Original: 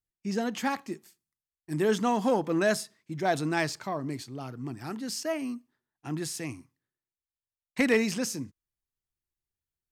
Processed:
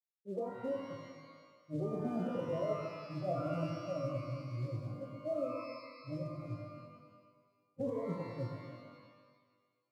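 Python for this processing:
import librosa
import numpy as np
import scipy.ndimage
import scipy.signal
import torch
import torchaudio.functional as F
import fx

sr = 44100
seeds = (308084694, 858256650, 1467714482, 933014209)

y = fx.lower_of_two(x, sr, delay_ms=1.5)
y = fx.noise_reduce_blind(y, sr, reduce_db=23)
y = scipy.signal.sosfilt(scipy.signal.cheby1(4, 1.0, [110.0, 560.0], 'bandpass', fs=sr, output='sos'), y)
y = fx.over_compress(y, sr, threshold_db=-38.0, ratio=-1.0)
y = fx.quant_float(y, sr, bits=4)
y = fx.air_absorb(y, sr, metres=52.0)
y = fx.rev_shimmer(y, sr, seeds[0], rt60_s=1.5, semitones=12, shimmer_db=-8, drr_db=1.0)
y = y * librosa.db_to_amplitude(1.5)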